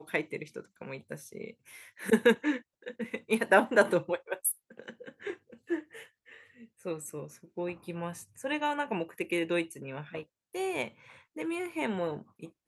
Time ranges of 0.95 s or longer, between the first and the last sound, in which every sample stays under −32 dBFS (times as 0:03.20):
0:05.79–0:06.86